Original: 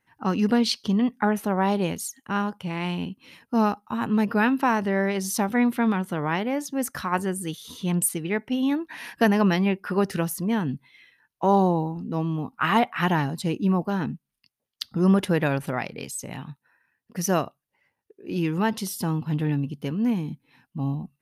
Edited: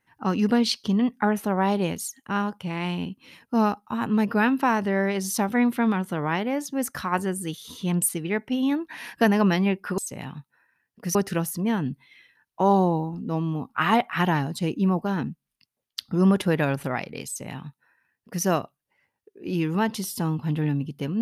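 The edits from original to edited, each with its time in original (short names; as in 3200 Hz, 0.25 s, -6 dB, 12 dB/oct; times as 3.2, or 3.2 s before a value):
16.1–17.27 copy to 9.98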